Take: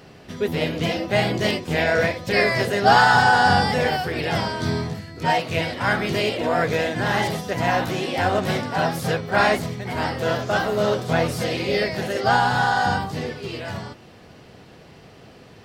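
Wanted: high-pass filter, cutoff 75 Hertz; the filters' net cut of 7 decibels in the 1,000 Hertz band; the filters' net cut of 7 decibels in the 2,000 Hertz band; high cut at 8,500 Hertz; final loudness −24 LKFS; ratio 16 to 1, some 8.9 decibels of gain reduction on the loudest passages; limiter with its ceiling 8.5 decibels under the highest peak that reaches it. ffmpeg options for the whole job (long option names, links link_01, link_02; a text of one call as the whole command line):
ffmpeg -i in.wav -af "highpass=75,lowpass=8500,equalizer=frequency=1000:width_type=o:gain=-9,equalizer=frequency=2000:width_type=o:gain=-5.5,acompressor=threshold=-25dB:ratio=16,volume=9.5dB,alimiter=limit=-15dB:level=0:latency=1" out.wav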